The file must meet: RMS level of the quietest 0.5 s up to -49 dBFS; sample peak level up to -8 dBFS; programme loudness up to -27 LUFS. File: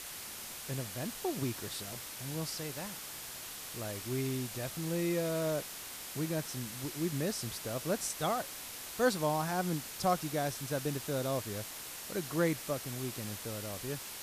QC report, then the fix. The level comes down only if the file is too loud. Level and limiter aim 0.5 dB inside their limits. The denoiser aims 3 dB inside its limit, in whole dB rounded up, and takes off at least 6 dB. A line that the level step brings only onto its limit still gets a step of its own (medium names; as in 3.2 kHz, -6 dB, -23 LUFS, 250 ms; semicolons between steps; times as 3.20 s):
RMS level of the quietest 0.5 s -45 dBFS: fail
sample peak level -16.0 dBFS: pass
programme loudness -36.0 LUFS: pass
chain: noise reduction 7 dB, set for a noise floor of -45 dBFS